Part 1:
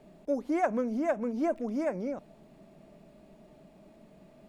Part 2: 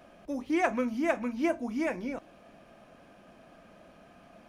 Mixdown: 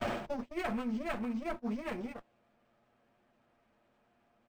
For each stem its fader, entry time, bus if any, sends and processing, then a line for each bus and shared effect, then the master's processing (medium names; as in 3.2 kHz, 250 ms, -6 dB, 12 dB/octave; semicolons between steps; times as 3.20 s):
-2.0 dB, 0.00 s, no send, peaking EQ 640 Hz -14.5 dB 1.5 oct; peak limiter -35 dBFS, peak gain reduction 10.5 dB
+1.5 dB, 0.5 ms, no send, comb filter that takes the minimum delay 8.5 ms; level flattener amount 70%; auto duck -11 dB, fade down 0.45 s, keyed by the first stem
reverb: none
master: gate -35 dBFS, range -29 dB; decimation joined by straight lines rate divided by 4×